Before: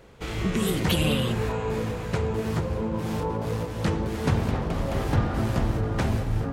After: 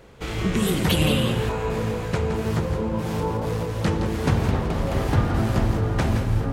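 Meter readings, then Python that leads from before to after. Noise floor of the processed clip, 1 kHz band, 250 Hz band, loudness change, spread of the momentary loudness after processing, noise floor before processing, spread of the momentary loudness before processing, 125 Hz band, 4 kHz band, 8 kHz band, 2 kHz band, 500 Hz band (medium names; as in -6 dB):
-30 dBFS, +3.0 dB, +3.0 dB, +3.0 dB, 5 LU, -33 dBFS, 5 LU, +3.5 dB, +3.0 dB, +3.0 dB, +3.0 dB, +3.0 dB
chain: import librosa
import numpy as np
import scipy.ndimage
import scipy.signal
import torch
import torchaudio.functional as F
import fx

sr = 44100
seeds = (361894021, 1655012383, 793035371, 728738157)

y = x + 10.0 ** (-8.5 / 20.0) * np.pad(x, (int(168 * sr / 1000.0), 0))[:len(x)]
y = F.gain(torch.from_numpy(y), 2.5).numpy()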